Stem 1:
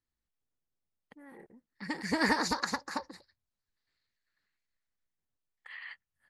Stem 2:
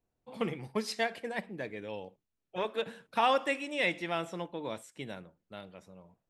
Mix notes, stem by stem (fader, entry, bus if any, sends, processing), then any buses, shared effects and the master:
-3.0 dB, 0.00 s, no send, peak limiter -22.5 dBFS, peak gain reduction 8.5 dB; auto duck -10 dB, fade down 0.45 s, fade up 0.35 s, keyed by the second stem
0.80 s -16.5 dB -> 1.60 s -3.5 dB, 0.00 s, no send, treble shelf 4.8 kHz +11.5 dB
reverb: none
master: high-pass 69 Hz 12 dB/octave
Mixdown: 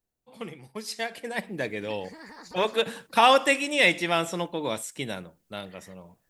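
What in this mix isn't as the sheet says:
stem 2 -16.5 dB -> -5.0 dB; master: missing high-pass 69 Hz 12 dB/octave

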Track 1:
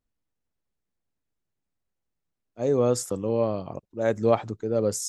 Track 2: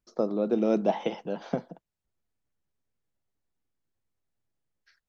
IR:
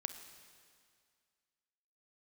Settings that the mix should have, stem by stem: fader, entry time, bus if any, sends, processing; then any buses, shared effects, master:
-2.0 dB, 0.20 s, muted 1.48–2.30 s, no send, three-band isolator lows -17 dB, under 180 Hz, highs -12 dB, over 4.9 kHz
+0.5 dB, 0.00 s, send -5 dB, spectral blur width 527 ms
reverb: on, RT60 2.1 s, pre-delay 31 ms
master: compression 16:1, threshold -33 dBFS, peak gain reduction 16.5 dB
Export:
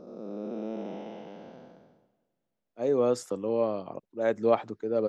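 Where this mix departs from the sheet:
stem 2 +0.5 dB -> -10.0 dB; master: missing compression 16:1, threshold -33 dBFS, peak gain reduction 16.5 dB

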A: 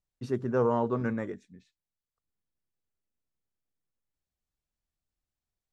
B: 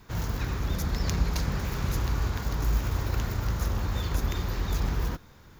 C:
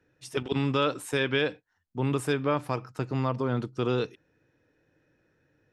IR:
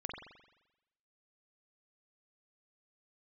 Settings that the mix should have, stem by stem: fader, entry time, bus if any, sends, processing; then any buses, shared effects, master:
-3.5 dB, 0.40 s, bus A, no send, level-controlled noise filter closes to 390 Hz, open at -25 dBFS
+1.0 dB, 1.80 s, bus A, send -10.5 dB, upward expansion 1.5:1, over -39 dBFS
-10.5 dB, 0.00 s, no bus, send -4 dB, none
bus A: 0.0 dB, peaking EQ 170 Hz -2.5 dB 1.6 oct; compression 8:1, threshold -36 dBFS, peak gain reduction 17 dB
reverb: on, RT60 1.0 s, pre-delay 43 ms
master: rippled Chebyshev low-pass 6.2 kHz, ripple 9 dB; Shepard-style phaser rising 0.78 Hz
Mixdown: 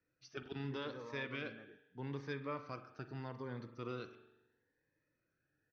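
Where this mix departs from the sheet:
stem A -3.5 dB -> -13.5 dB; stem B: muted

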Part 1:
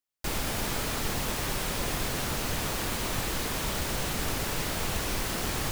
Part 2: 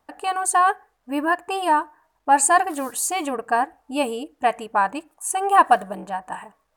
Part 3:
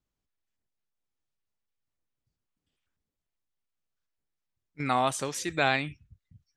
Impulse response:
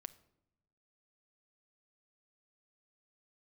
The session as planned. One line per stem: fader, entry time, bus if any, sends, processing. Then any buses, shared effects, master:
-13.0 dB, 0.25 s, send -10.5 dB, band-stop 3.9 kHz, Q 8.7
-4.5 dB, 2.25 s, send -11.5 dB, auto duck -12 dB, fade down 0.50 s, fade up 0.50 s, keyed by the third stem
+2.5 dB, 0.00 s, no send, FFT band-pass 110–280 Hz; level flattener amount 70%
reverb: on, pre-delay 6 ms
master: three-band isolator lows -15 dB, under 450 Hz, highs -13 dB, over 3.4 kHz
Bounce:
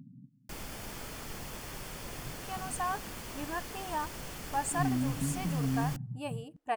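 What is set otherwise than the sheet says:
stem 2: send off; master: missing three-band isolator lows -15 dB, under 450 Hz, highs -13 dB, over 3.4 kHz

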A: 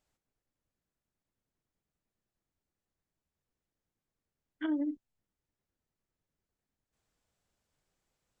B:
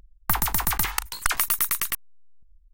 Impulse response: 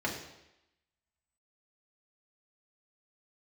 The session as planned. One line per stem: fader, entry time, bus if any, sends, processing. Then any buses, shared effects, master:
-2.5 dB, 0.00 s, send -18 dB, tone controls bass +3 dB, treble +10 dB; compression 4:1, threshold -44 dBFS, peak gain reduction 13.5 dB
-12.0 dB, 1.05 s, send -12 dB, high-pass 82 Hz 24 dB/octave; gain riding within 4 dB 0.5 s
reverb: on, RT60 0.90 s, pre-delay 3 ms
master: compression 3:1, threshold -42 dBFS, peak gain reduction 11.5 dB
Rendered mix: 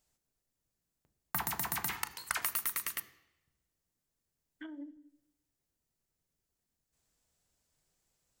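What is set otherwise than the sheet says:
stem B: missing gain riding within 4 dB 0.5 s; master: missing compression 3:1, threshold -42 dBFS, peak gain reduction 11.5 dB

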